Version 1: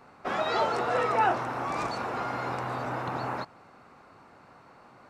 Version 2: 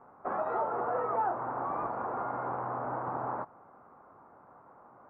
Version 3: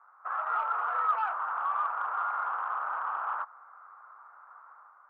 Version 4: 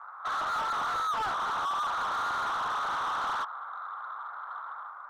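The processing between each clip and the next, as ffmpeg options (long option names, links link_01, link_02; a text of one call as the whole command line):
ffmpeg -i in.wav -af "lowpass=frequency=1200:width=0.5412,lowpass=frequency=1200:width=1.3066,lowshelf=frequency=420:gain=-9.5,acompressor=threshold=-31dB:ratio=2.5,volume=2dB" out.wav
ffmpeg -i in.wav -filter_complex "[0:a]dynaudnorm=framelen=100:gausssize=7:maxgain=6dB,asplit=2[link_01][link_02];[link_02]highpass=frequency=720:poles=1,volume=10dB,asoftclip=type=tanh:threshold=-13.5dB[link_03];[link_01][link_03]amix=inputs=2:normalize=0,lowpass=frequency=1800:poles=1,volume=-6dB,highpass=frequency=1300:width_type=q:width=3.4,volume=-8.5dB" out.wav
ffmpeg -i in.wav -filter_complex "[0:a]asplit=2[link_01][link_02];[link_02]highpass=frequency=720:poles=1,volume=28dB,asoftclip=type=tanh:threshold=-18dB[link_03];[link_01][link_03]amix=inputs=2:normalize=0,lowpass=frequency=2200:poles=1,volume=-6dB,volume=-6dB" out.wav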